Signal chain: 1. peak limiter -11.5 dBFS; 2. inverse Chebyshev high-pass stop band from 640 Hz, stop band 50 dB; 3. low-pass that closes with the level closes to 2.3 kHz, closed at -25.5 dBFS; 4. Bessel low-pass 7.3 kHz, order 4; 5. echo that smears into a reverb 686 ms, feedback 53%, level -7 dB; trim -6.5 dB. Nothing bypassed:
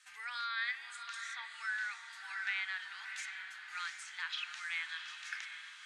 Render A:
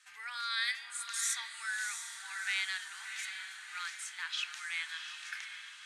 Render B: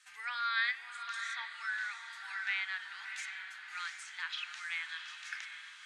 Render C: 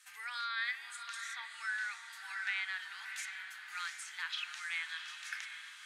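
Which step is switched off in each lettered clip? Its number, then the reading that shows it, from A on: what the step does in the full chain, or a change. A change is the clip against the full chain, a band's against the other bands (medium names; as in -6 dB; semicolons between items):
3, 8 kHz band +13.0 dB; 1, momentary loudness spread change +2 LU; 4, 8 kHz band +3.0 dB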